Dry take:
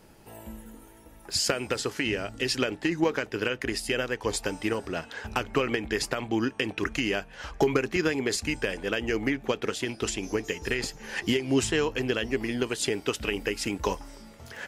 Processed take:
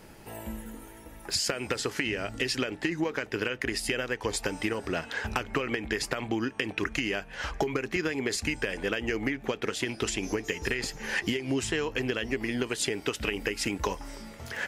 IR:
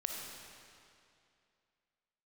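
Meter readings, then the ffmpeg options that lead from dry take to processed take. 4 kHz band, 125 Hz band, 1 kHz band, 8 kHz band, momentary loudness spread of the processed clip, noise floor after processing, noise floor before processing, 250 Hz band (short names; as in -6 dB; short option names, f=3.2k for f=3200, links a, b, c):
-1.5 dB, -2.0 dB, -2.0 dB, -1.0 dB, 7 LU, -48 dBFS, -51 dBFS, -2.5 dB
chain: -af "equalizer=f=2k:w=1.9:g=3.5,acompressor=threshold=-30dB:ratio=6,volume=4dB"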